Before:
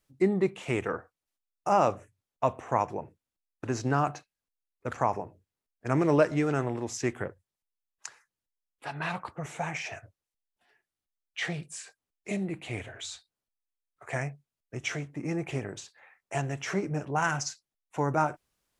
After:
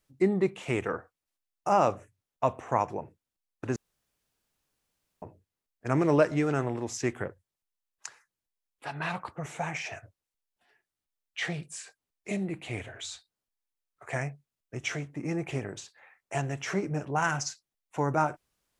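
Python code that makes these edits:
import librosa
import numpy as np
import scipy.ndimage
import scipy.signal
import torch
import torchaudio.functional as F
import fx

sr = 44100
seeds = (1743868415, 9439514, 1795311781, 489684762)

y = fx.edit(x, sr, fx.room_tone_fill(start_s=3.76, length_s=1.46), tone=tone)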